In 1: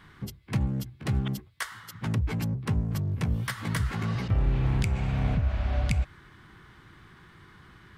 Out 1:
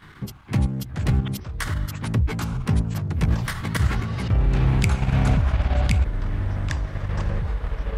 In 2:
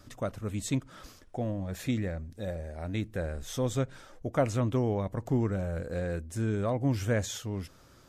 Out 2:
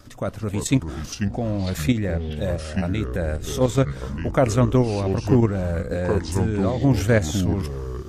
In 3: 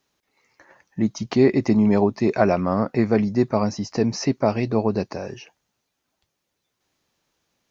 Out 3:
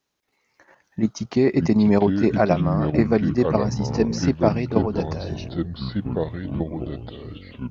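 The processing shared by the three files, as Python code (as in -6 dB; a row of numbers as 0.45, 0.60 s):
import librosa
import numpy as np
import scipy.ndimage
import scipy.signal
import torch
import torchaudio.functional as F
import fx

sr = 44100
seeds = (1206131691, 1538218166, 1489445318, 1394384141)

y = fx.level_steps(x, sr, step_db=9)
y = fx.echo_pitch(y, sr, ms=249, semitones=-5, count=3, db_per_echo=-6.0)
y = y * 10.0 ** (-22 / 20.0) / np.sqrt(np.mean(np.square(y)))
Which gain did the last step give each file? +9.0, +12.0, +2.5 dB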